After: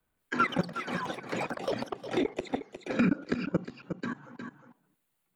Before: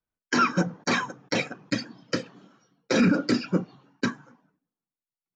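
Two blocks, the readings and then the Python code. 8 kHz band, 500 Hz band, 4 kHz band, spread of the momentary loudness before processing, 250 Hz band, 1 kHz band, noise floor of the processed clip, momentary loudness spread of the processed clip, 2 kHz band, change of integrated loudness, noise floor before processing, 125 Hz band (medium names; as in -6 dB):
no reading, -3.0 dB, -9.5 dB, 10 LU, -5.5 dB, -4.0 dB, -79 dBFS, 12 LU, -6.5 dB, -6.0 dB, under -85 dBFS, -5.5 dB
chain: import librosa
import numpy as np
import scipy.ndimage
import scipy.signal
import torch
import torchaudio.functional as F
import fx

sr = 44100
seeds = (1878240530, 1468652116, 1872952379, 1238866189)

y = fx.peak_eq(x, sr, hz=5500.0, db=-13.0, octaves=0.61)
y = fx.level_steps(y, sr, step_db=20)
y = fx.echo_pitch(y, sr, ms=172, semitones=7, count=3, db_per_echo=-6.0)
y = y + 10.0 ** (-14.0 / 20.0) * np.pad(y, (int(359 * sr / 1000.0), 0))[:len(y)]
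y = fx.band_squash(y, sr, depth_pct=70)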